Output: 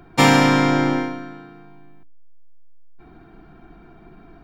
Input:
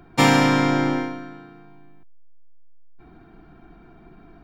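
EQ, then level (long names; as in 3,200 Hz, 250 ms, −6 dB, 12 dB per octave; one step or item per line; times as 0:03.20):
mains-hum notches 60/120/180/240/300 Hz
+2.5 dB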